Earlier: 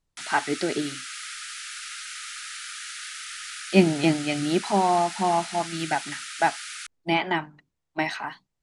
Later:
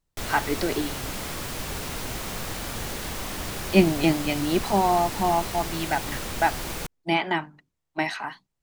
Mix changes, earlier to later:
speech: remove LPF 10000 Hz; background: remove brick-wall FIR band-pass 1200–11000 Hz

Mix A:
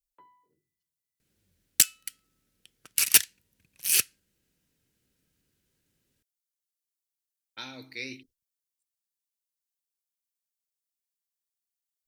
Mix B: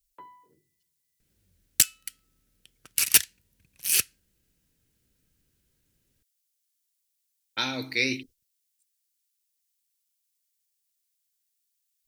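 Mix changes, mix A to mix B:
speech +12.0 dB; first sound +10.0 dB; second sound: add low shelf 80 Hz +12 dB

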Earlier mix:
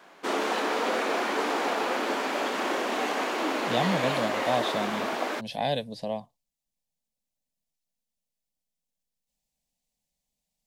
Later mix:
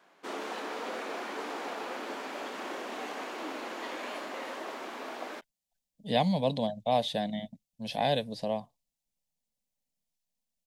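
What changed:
speech: entry +2.40 s; background -10.0 dB

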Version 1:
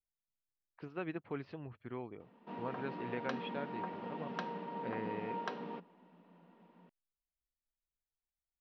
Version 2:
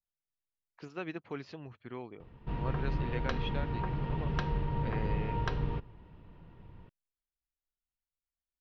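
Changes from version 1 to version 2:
speech: remove air absorption 300 m; background: remove rippled Chebyshev high-pass 170 Hz, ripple 6 dB

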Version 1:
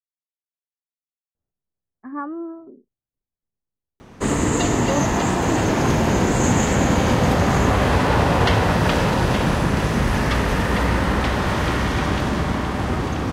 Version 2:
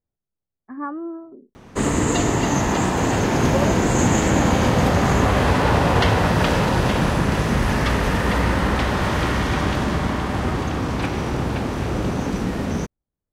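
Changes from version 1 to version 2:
speech: entry -1.35 s; background: entry -2.45 s

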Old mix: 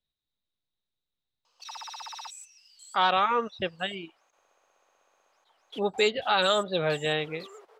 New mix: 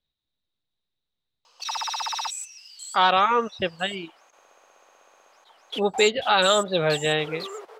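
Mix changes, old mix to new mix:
speech +4.5 dB; background +11.5 dB

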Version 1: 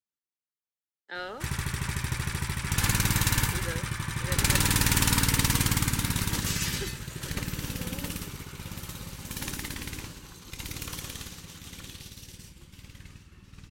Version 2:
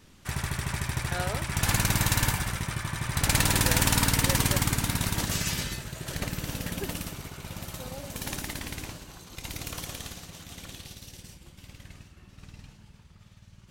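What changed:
background: entry -1.15 s; master: add bell 670 Hz +12.5 dB 0.39 oct

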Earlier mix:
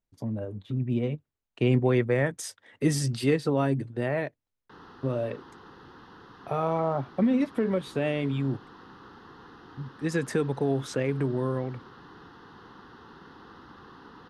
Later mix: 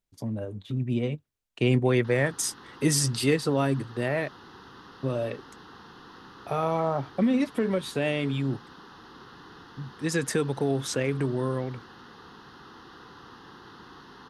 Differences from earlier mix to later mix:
background: entry -2.65 s; master: add high shelf 3000 Hz +10 dB

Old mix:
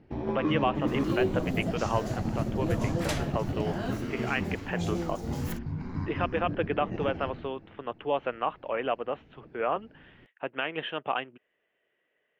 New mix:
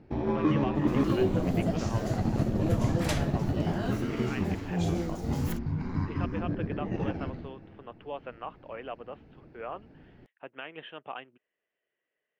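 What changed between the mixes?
speech -10.0 dB; first sound +3.0 dB

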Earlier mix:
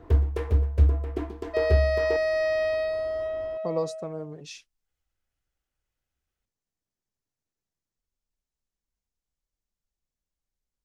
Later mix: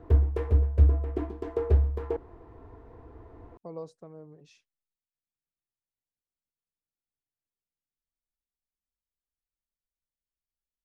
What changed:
speech -10.5 dB; second sound: muted; master: add high shelf 2000 Hz -10 dB

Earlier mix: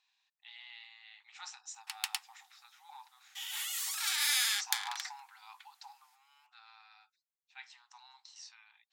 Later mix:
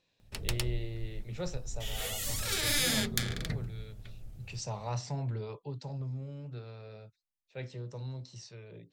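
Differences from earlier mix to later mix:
background: entry -1.55 s; master: remove brick-wall FIR high-pass 740 Hz

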